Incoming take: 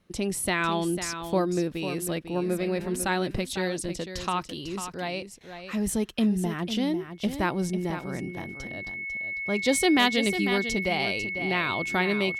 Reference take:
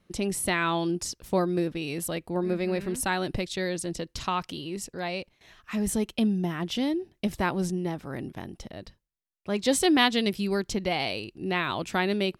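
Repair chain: clip repair -11 dBFS; band-stop 2.2 kHz, Q 30; inverse comb 498 ms -9.5 dB

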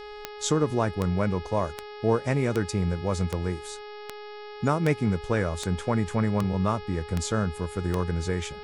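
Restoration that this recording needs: de-click; de-hum 418.3 Hz, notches 13

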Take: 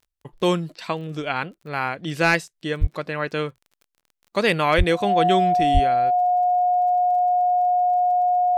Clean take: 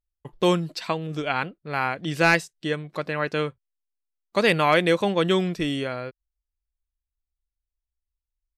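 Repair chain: de-click; band-stop 720 Hz, Q 30; de-plosive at 2.80/4.77/5.73 s; interpolate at 0.76/4.01 s, 23 ms

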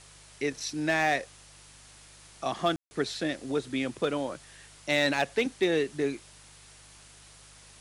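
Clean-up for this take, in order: clip repair -17 dBFS; de-hum 50.2 Hz, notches 3; room tone fill 2.76–2.91 s; noise reduction 21 dB, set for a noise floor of -53 dBFS

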